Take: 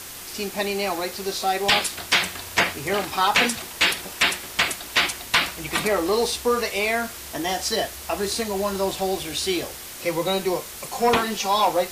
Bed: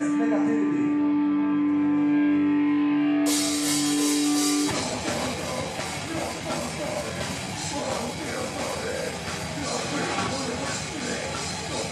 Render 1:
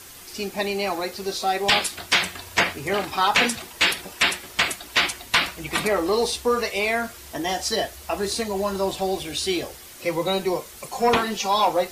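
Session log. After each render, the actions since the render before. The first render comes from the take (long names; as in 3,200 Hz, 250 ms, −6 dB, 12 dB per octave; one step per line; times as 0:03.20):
broadband denoise 7 dB, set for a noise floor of −38 dBFS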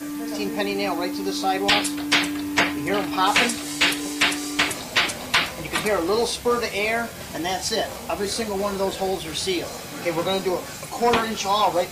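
mix in bed −7 dB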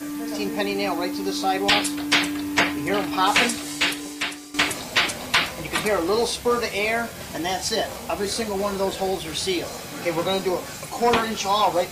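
0:03.52–0:04.54: fade out, to −14 dB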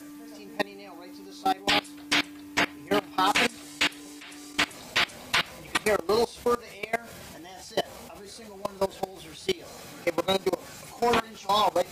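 output level in coarse steps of 22 dB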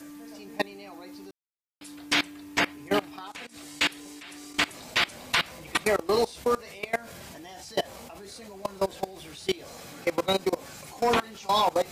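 0:01.31–0:01.81: silence
0:03.08–0:03.67: downward compressor 10 to 1, threshold −38 dBFS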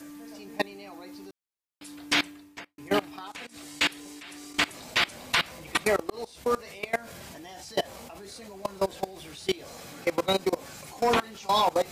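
0:02.27–0:02.78: fade out quadratic
0:06.10–0:06.57: fade in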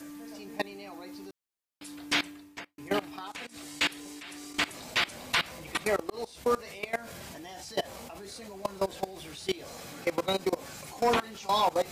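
brickwall limiter −17.5 dBFS, peak gain reduction 6 dB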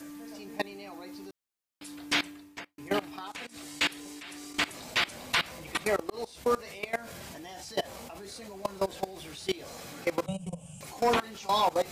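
0:10.26–0:10.81: drawn EQ curve 100 Hz 0 dB, 170 Hz +11 dB, 250 Hz −15 dB, 360 Hz −25 dB, 580 Hz −8 dB, 2,000 Hz −28 dB, 2,900 Hz −1 dB, 4,100 Hz −27 dB, 8,900 Hz +3 dB, 14,000 Hz −30 dB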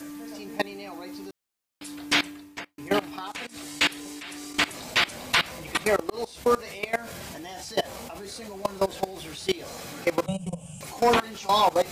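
level +5 dB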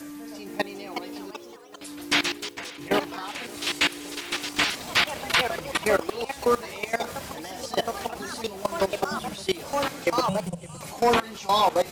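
delay with pitch and tempo change per echo 463 ms, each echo +3 semitones, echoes 3, each echo −6 dB
repeating echo 565 ms, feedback 48%, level −22.5 dB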